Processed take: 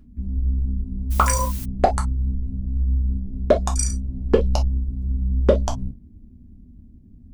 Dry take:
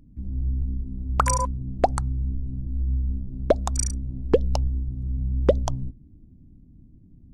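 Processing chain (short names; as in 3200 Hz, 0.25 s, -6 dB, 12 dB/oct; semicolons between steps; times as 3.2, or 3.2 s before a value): non-linear reverb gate 80 ms falling, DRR 0 dB; 1.1–1.64 added noise blue -38 dBFS; gain +1 dB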